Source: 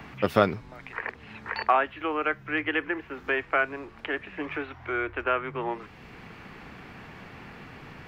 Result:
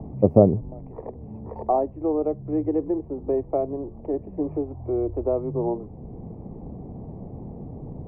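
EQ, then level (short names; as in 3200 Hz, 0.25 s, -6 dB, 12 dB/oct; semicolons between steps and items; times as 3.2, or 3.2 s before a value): inverse Chebyshev low-pass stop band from 1400 Hz, stop band 40 dB; low shelf 200 Hz +7 dB; +6.5 dB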